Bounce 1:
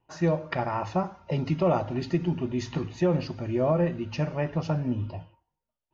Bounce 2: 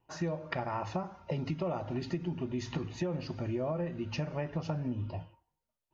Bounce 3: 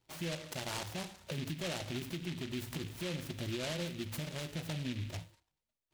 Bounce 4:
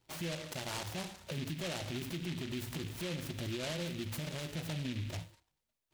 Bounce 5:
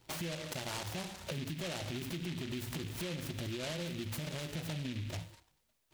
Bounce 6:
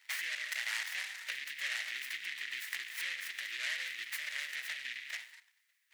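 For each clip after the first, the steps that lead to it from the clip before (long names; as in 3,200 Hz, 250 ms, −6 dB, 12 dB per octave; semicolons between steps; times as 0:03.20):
downward compressor, threshold −30 dBFS, peak gain reduction 10.5 dB; level −1 dB
brickwall limiter −27.5 dBFS, peak gain reduction 7 dB; short delay modulated by noise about 2,700 Hz, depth 0.21 ms; level −3 dB
brickwall limiter −34.5 dBFS, peak gain reduction 4 dB; level +3 dB
downward compressor 3 to 1, threshold −49 dBFS, peak gain reduction 10.5 dB; level +9 dB
high-pass with resonance 1,900 Hz, resonance Q 6.1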